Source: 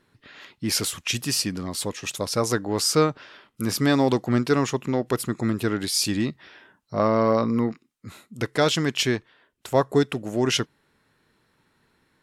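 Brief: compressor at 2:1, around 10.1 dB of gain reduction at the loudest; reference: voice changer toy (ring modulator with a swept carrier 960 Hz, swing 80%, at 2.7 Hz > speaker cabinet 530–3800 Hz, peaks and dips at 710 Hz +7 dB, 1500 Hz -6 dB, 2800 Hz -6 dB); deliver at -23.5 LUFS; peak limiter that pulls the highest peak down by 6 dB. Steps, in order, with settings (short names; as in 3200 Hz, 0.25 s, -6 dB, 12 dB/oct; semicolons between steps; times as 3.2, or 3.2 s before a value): compressor 2:1, threshold -33 dBFS; limiter -22 dBFS; ring modulator with a swept carrier 960 Hz, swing 80%, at 2.7 Hz; speaker cabinet 530–3800 Hz, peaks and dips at 710 Hz +7 dB, 1500 Hz -6 dB, 2800 Hz -6 dB; gain +14.5 dB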